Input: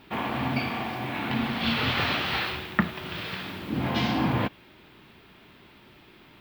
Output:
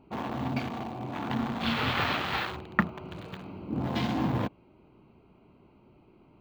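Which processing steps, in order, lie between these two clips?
adaptive Wiener filter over 25 samples
0:01.08–0:03.84: dynamic equaliser 1,100 Hz, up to +4 dB, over −41 dBFS, Q 0.91
level −2.5 dB

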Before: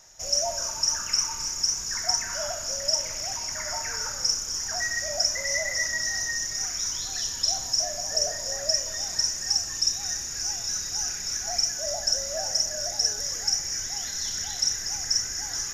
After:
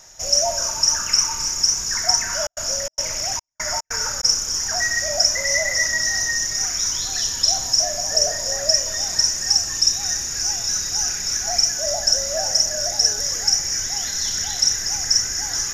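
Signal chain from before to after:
0:02.35–0:04.23: gate pattern "xx.xxxx..xx.x" 146 BPM −60 dB
level +7 dB

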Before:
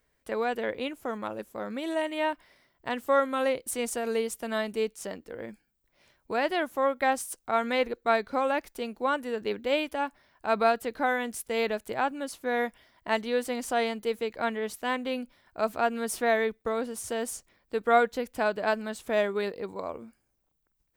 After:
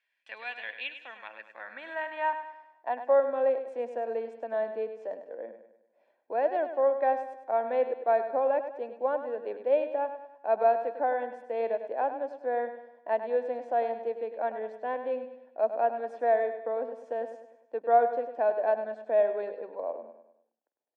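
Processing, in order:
graphic EQ with 10 bands 250 Hz +6 dB, 500 Hz +5 dB, 2,000 Hz +5 dB
band-pass filter sweep 2,800 Hz → 540 Hz, 0:00.99–0:03.30
high-pass filter 140 Hz
three-way crossover with the lows and the highs turned down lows −14 dB, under 270 Hz, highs −22 dB, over 7,100 Hz
mains-hum notches 50/100/150/200 Hz
comb filter 1.2 ms, depth 54%
on a send: repeating echo 101 ms, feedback 45%, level −10 dB

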